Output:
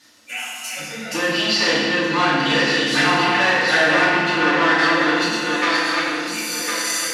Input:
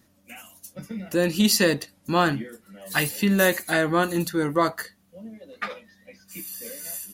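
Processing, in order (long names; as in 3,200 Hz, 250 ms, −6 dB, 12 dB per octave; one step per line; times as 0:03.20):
feedback delay that plays each chunk backwards 528 ms, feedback 53%, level −3.5 dB
treble cut that deepens with the level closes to 2,000 Hz, closed at −18 dBFS
parametric band 4,900 Hz +6 dB 1.8 octaves
in parallel at −1 dB: brickwall limiter −15.5 dBFS, peak gain reduction 9.5 dB
on the sum: soft clipping −18 dBFS, distortion −9 dB
resonant band-pass 2,800 Hz, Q 0.51
feedback delay network reverb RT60 1.7 s, low-frequency decay 1.55×, high-frequency decay 0.7×, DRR −9 dB
level +2 dB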